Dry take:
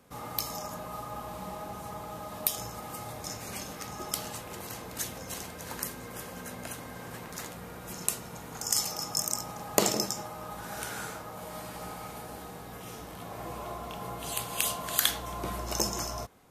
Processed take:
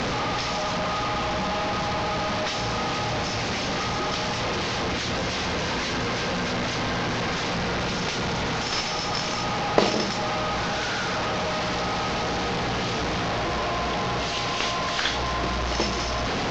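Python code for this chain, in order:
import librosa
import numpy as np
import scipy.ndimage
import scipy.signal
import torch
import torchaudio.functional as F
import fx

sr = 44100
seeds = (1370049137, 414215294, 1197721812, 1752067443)

y = fx.delta_mod(x, sr, bps=32000, step_db=-26.0)
y = fx.air_absorb(y, sr, metres=60.0)
y = y * 10.0 ** (6.5 / 20.0)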